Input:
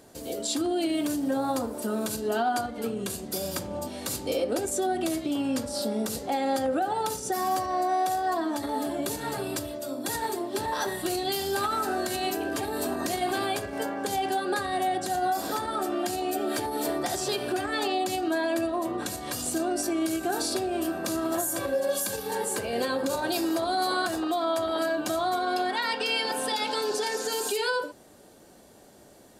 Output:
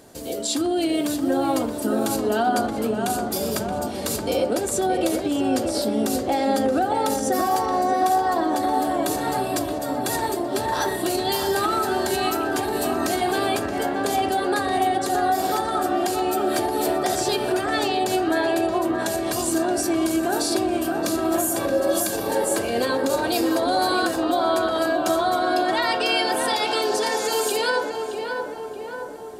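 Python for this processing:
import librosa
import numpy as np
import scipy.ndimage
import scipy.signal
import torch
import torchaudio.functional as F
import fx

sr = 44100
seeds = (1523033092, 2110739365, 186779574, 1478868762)

y = fx.echo_filtered(x, sr, ms=624, feedback_pct=63, hz=1900.0, wet_db=-4.5)
y = y * librosa.db_to_amplitude(4.5)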